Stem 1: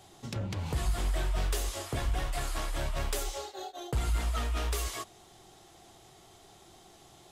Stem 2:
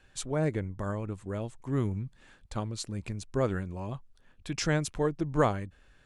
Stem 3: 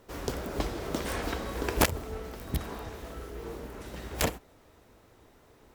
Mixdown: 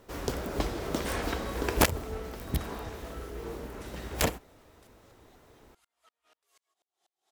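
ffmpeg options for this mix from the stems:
-filter_complex "[0:a]highpass=520,acompressor=threshold=0.00501:ratio=6,aeval=exprs='val(0)*pow(10,-39*if(lt(mod(-4.1*n/s,1),2*abs(-4.1)/1000),1-mod(-4.1*n/s,1)/(2*abs(-4.1)/1000),(mod(-4.1*n/s,1)-2*abs(-4.1)/1000)/(1-2*abs(-4.1)/1000))/20)':c=same,adelay=1700,volume=0.237[s0];[2:a]volume=1.12[s1];[s0][s1]amix=inputs=2:normalize=0"

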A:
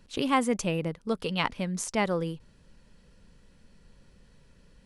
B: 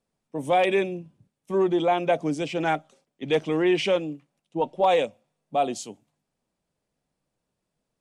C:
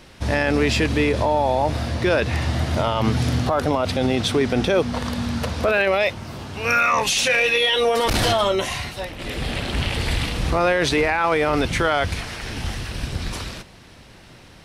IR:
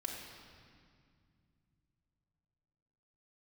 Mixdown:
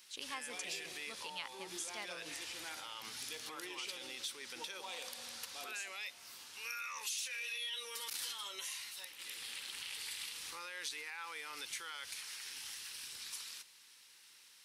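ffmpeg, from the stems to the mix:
-filter_complex "[0:a]highshelf=f=8400:g=-12,volume=1.33[s0];[1:a]volume=0.562,asplit=2[s1][s2];[s2]volume=0.631[s3];[2:a]lowshelf=f=440:g=-6,volume=0.562,asplit=2[s4][s5];[s5]volume=0.0891[s6];[s1][s4]amix=inputs=2:normalize=0,asuperstop=centerf=660:order=4:qfactor=3.2,alimiter=limit=0.112:level=0:latency=1,volume=1[s7];[3:a]atrim=start_sample=2205[s8];[s3][s6]amix=inputs=2:normalize=0[s9];[s9][s8]afir=irnorm=-1:irlink=0[s10];[s0][s7][s10]amix=inputs=3:normalize=0,aderivative,acompressor=threshold=0.00631:ratio=2"

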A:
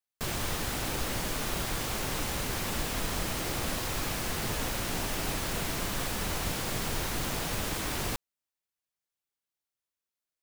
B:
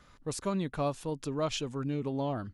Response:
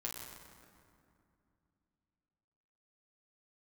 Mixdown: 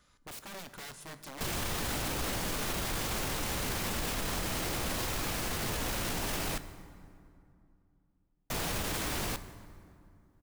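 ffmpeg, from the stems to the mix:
-filter_complex "[0:a]adelay=1200,volume=1.33,asplit=3[s0][s1][s2];[s0]atrim=end=6.58,asetpts=PTS-STARTPTS,afade=t=out:st=6.576:d=0.004:c=hsin[s3];[s1]atrim=start=6.58:end=8.5,asetpts=PTS-STARTPTS,volume=0[s4];[s2]atrim=start=8.5,asetpts=PTS-STARTPTS,afade=t=in:d=0.004:c=hsin[s5];[s3][s4][s5]concat=n=3:v=0:a=1,asplit=2[s6][s7];[s7]volume=0.211[s8];[1:a]highshelf=f=4200:g=11.5,aeval=exprs='(mod(29.9*val(0)+1,2)-1)/29.9':c=same,volume=0.251,asplit=2[s9][s10];[s10]volume=0.501[s11];[2:a]atrim=start_sample=2205[s12];[s8][s11]amix=inputs=2:normalize=0[s13];[s13][s12]afir=irnorm=-1:irlink=0[s14];[s6][s9][s14]amix=inputs=3:normalize=0,alimiter=level_in=1.12:limit=0.0631:level=0:latency=1:release=13,volume=0.891"

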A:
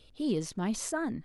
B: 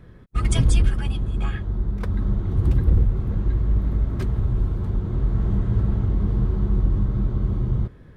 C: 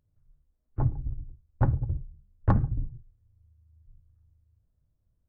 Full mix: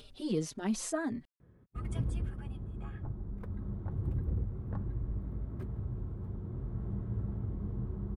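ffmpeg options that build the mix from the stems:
-filter_complex "[0:a]acompressor=mode=upward:threshold=0.00631:ratio=2.5,asplit=2[s0][s1];[s1]adelay=4.5,afreqshift=-1.9[s2];[s0][s2]amix=inputs=2:normalize=1,volume=1.06[s3];[1:a]highpass=65,equalizer=f=5000:w=0.45:g=-14.5,adelay=1400,volume=0.224[s4];[2:a]acompressor=threshold=0.0501:ratio=6,adelay=2250,volume=0.266[s5];[s3][s4][s5]amix=inputs=3:normalize=0"

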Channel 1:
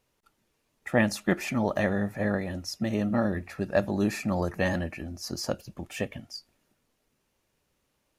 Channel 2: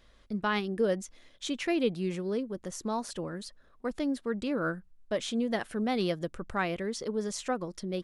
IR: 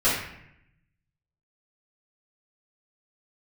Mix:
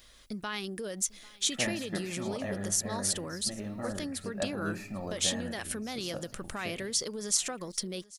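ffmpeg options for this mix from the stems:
-filter_complex "[0:a]adelay=650,volume=0.237,asplit=2[s0][s1];[s1]volume=0.0891[s2];[1:a]alimiter=level_in=1.33:limit=0.0631:level=0:latency=1:release=63,volume=0.75,acompressor=threshold=0.02:ratio=6,crystalizer=i=6:c=0,volume=0.891,asplit=2[s3][s4];[s4]volume=0.0708[s5];[2:a]atrim=start_sample=2205[s6];[s2][s6]afir=irnorm=-1:irlink=0[s7];[s5]aecho=0:1:793:1[s8];[s0][s3][s7][s8]amix=inputs=4:normalize=0"

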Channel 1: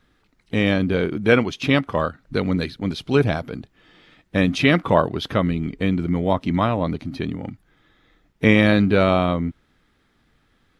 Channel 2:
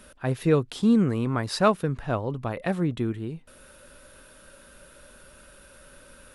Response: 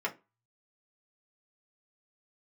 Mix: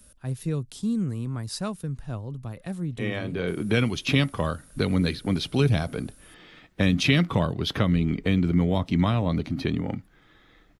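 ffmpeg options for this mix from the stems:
-filter_complex "[0:a]adelay=2450,volume=1.19,asplit=2[s0][s1];[s1]volume=0.0891[s2];[1:a]bass=f=250:g=13,treble=f=4000:g=15,volume=0.211,asplit=2[s3][s4];[s4]apad=whole_len=583953[s5];[s0][s5]sidechaincompress=threshold=0.00631:ratio=8:attack=16:release=534[s6];[2:a]atrim=start_sample=2205[s7];[s2][s7]afir=irnorm=-1:irlink=0[s8];[s6][s3][s8]amix=inputs=3:normalize=0,acrossover=split=210|3000[s9][s10][s11];[s10]acompressor=threshold=0.0501:ratio=6[s12];[s9][s12][s11]amix=inputs=3:normalize=0"

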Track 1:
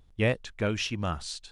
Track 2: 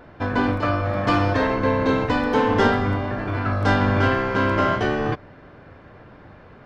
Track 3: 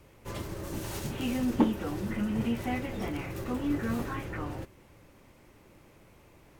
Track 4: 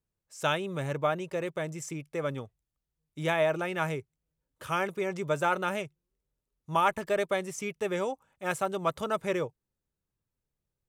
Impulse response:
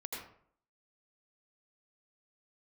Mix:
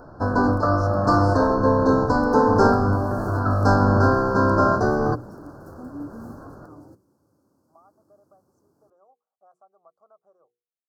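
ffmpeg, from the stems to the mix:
-filter_complex "[0:a]volume=0.237[s0];[1:a]volume=1.33[s1];[2:a]highpass=f=82:w=0.5412,highpass=f=82:w=1.3066,equalizer=f=280:t=o:w=0.9:g=7.5,acontrast=74,adelay=2300,volume=0.126[s2];[3:a]acompressor=threshold=0.01:ratio=4,asplit=3[s3][s4][s5];[s3]bandpass=f=730:t=q:w=8,volume=1[s6];[s4]bandpass=f=1090:t=q:w=8,volume=0.501[s7];[s5]bandpass=f=2440:t=q:w=8,volume=0.355[s8];[s6][s7][s8]amix=inputs=3:normalize=0,adelay=1000,volume=0.473[s9];[s0][s1][s2][s9]amix=inputs=4:normalize=0,asuperstop=centerf=2600:order=12:qfactor=0.89,bandreject=f=60:t=h:w=6,bandreject=f=120:t=h:w=6,bandreject=f=180:t=h:w=6,bandreject=f=240:t=h:w=6,bandreject=f=300:t=h:w=6,bandreject=f=360:t=h:w=6,bandreject=f=420:t=h:w=6,bandreject=f=480:t=h:w=6"

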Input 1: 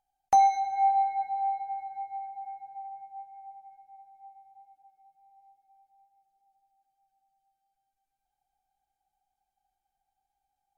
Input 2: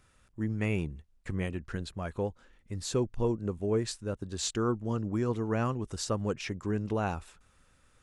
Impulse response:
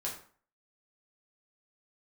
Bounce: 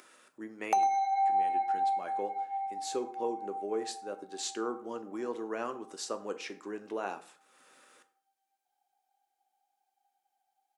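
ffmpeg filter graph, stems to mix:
-filter_complex "[0:a]adelay=400,volume=1.06,asplit=3[s0][s1][s2];[s1]volume=0.282[s3];[s2]volume=0.422[s4];[1:a]acompressor=mode=upward:threshold=0.00891:ratio=2.5,volume=0.501,asplit=2[s5][s6];[s6]volume=0.473[s7];[2:a]atrim=start_sample=2205[s8];[s3][s7]amix=inputs=2:normalize=0[s9];[s9][s8]afir=irnorm=-1:irlink=0[s10];[s4]aecho=0:1:102:1[s11];[s0][s5][s10][s11]amix=inputs=4:normalize=0,highpass=f=290:w=0.5412,highpass=f=290:w=1.3066,acompressor=threshold=0.0447:ratio=3"

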